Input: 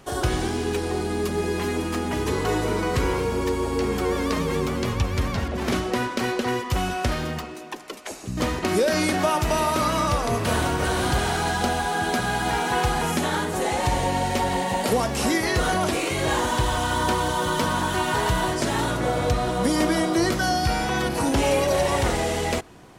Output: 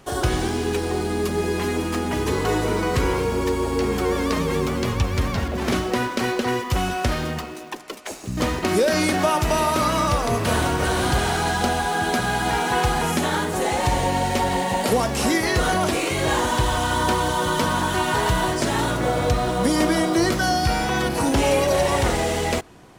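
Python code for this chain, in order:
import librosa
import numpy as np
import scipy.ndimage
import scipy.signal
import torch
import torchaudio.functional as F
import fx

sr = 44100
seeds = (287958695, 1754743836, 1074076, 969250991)

p1 = fx.quant_dither(x, sr, seeds[0], bits=6, dither='none')
y = x + F.gain(torch.from_numpy(p1), -12.0).numpy()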